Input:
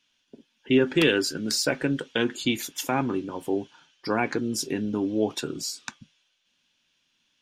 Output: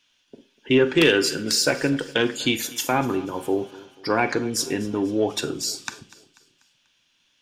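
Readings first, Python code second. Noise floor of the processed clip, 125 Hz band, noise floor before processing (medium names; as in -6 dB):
-66 dBFS, +2.5 dB, -72 dBFS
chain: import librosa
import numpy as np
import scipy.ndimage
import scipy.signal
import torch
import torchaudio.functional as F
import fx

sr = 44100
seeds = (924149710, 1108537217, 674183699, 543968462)

p1 = fx.peak_eq(x, sr, hz=210.0, db=-5.5, octaves=0.82)
p2 = p1 + fx.echo_feedback(p1, sr, ms=244, feedback_pct=48, wet_db=-20.5, dry=0)
p3 = fx.rev_schroeder(p2, sr, rt60_s=0.35, comb_ms=32, drr_db=12.5)
p4 = 10.0 ** (-10.0 / 20.0) * np.tanh(p3 / 10.0 ** (-10.0 / 20.0))
y = p4 * librosa.db_to_amplitude(5.0)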